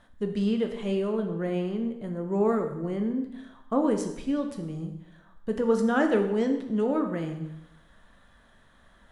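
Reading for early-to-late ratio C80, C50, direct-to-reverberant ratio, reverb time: 10.0 dB, 8.0 dB, 4.5 dB, 0.85 s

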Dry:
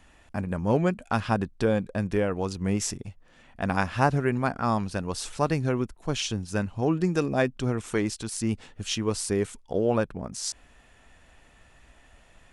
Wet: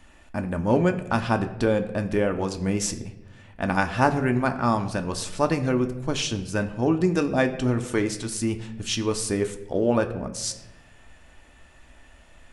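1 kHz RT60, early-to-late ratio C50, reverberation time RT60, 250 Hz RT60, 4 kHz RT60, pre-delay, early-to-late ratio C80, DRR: 0.90 s, 12.5 dB, 1.1 s, 1.4 s, 0.65 s, 3 ms, 14.5 dB, 6.0 dB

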